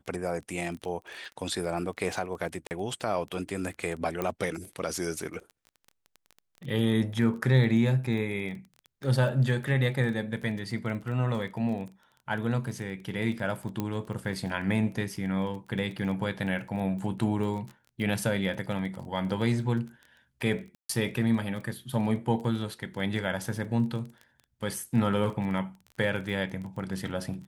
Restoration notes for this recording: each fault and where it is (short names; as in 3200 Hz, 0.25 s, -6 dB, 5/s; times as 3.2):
crackle 18/s -36 dBFS
2.67–2.71 gap 39 ms
4.22 pop -16 dBFS
13.8 pop -17 dBFS
20.75–20.89 gap 0.144 s